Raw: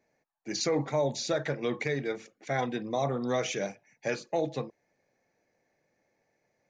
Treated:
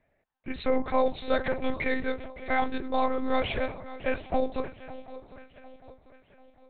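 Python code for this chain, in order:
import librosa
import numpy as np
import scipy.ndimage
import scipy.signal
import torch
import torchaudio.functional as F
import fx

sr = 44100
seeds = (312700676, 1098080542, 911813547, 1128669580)

y = fx.dynamic_eq(x, sr, hz=1100.0, q=1.4, threshold_db=-47.0, ratio=4.0, max_db=4)
y = fx.echo_swing(y, sr, ms=747, ratio=3, feedback_pct=44, wet_db=-16.0)
y = fx.lpc_monotone(y, sr, seeds[0], pitch_hz=260.0, order=8)
y = y * librosa.db_to_amplitude(3.0)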